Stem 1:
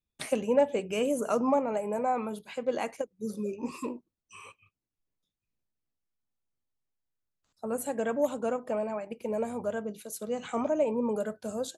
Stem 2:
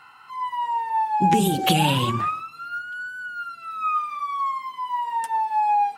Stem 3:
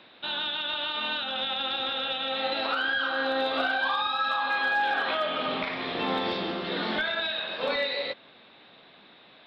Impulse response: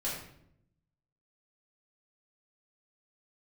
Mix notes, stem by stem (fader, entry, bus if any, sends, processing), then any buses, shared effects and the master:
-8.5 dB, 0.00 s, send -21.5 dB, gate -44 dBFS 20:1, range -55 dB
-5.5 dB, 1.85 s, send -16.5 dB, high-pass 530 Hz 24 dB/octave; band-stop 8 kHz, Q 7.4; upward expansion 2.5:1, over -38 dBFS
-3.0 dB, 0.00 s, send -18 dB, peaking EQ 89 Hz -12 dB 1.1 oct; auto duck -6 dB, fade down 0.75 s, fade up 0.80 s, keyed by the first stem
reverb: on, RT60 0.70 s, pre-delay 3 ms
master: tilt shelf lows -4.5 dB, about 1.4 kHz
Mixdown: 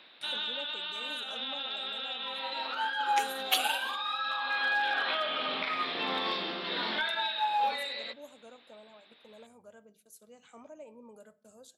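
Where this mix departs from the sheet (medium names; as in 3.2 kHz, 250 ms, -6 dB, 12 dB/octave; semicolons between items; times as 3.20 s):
stem 1 -8.5 dB -> -19.0 dB; stem 3: send off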